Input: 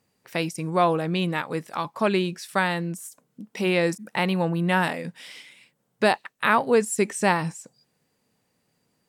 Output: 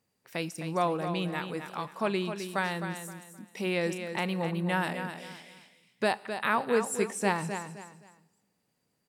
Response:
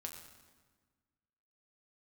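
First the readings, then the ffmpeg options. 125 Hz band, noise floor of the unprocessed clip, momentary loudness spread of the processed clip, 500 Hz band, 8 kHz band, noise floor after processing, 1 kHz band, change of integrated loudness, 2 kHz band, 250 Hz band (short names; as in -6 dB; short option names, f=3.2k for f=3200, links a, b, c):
-7.0 dB, -73 dBFS, 15 LU, -6.5 dB, -5.5 dB, -77 dBFS, -6.5 dB, -7.0 dB, -6.5 dB, -6.5 dB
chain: -filter_complex "[0:a]aecho=1:1:260|520|780:0.376|0.109|0.0316,asplit=2[a][b];[1:a]atrim=start_sample=2205,highshelf=f=5.8k:g=10.5[c];[b][c]afir=irnorm=-1:irlink=0,volume=-11.5dB[d];[a][d]amix=inputs=2:normalize=0,volume=-8.5dB"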